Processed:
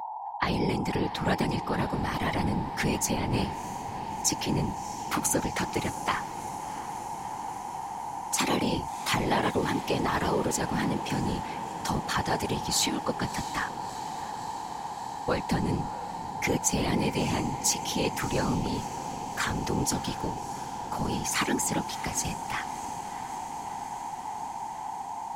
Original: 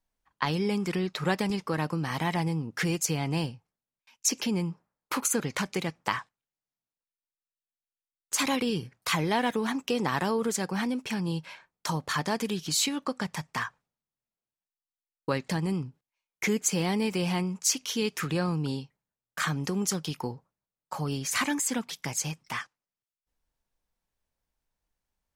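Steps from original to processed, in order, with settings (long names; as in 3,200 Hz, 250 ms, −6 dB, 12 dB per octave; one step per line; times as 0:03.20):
steady tone 860 Hz −34 dBFS
random phases in short frames
feedback delay with all-pass diffusion 669 ms, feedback 78%, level −15 dB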